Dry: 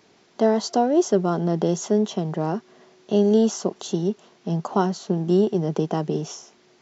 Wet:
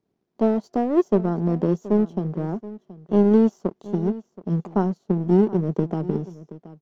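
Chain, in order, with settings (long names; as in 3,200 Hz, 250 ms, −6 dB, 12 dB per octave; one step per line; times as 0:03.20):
tilt shelving filter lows +10 dB, about 650 Hz
power curve on the samples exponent 1.4
single-tap delay 725 ms −17 dB
level −3 dB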